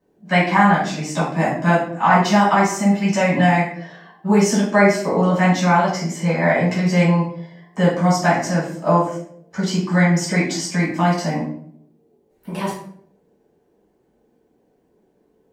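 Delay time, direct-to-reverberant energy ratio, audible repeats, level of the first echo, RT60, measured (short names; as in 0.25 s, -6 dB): none, -8.5 dB, none, none, 0.65 s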